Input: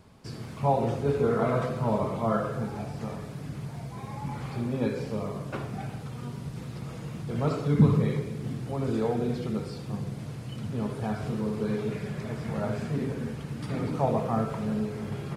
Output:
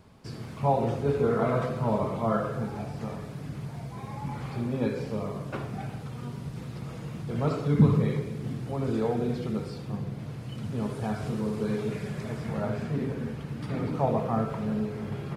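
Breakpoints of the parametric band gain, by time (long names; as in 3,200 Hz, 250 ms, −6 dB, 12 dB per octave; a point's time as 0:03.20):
parametric band 8,500 Hz 1.6 octaves
0:09.71 −2.5 dB
0:10.08 −9.5 dB
0:10.88 +2 dB
0:12.29 +2 dB
0:12.74 −6 dB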